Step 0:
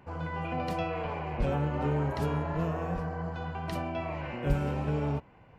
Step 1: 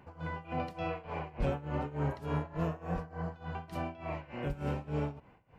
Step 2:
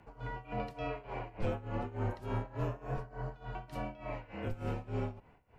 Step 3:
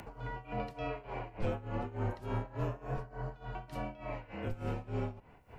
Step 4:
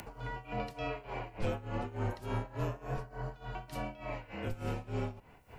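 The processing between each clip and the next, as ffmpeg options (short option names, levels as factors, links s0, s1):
-af "tremolo=f=3.4:d=0.88,volume=0.891"
-af "afreqshift=-39,volume=0.794"
-af "acompressor=mode=upward:threshold=0.00891:ratio=2.5"
-af "highshelf=f=3200:g=9"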